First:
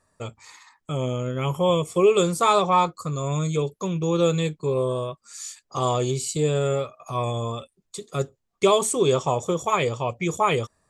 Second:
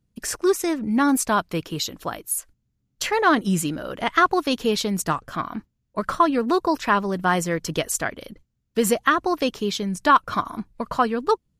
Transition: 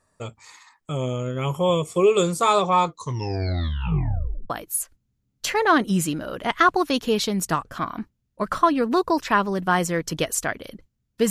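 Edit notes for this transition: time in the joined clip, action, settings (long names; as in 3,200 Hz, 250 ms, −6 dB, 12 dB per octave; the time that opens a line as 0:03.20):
first
0:02.85: tape stop 1.65 s
0:04.50: continue with second from 0:02.07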